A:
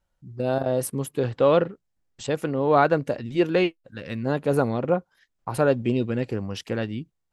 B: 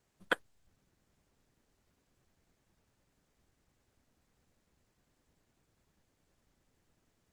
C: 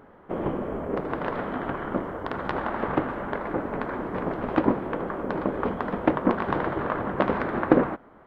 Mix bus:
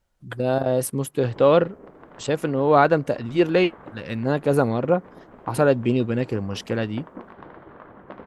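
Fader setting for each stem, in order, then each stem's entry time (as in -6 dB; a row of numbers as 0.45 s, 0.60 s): +2.5 dB, -5.5 dB, -17.0 dB; 0.00 s, 0.00 s, 0.90 s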